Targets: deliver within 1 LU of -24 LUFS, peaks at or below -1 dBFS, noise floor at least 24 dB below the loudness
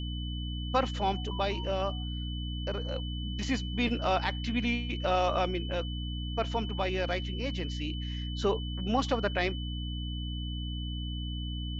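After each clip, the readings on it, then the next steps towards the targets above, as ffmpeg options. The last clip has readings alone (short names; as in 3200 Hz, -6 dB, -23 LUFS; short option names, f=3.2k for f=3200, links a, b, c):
hum 60 Hz; harmonics up to 300 Hz; hum level -33 dBFS; steady tone 3000 Hz; tone level -42 dBFS; loudness -32.5 LUFS; peak -13.5 dBFS; loudness target -24.0 LUFS
-> -af "bandreject=f=60:t=h:w=6,bandreject=f=120:t=h:w=6,bandreject=f=180:t=h:w=6,bandreject=f=240:t=h:w=6,bandreject=f=300:t=h:w=6"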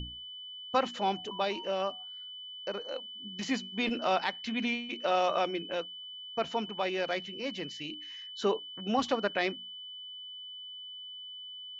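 hum none; steady tone 3000 Hz; tone level -42 dBFS
-> -af "bandreject=f=3k:w=30"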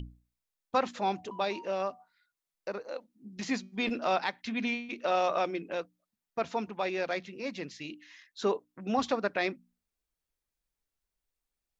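steady tone none; loudness -33.0 LUFS; peak -14.5 dBFS; loudness target -24.0 LUFS
-> -af "volume=9dB"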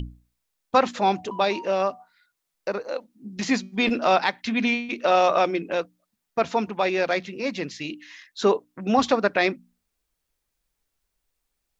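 loudness -24.0 LUFS; peak -5.5 dBFS; noise floor -80 dBFS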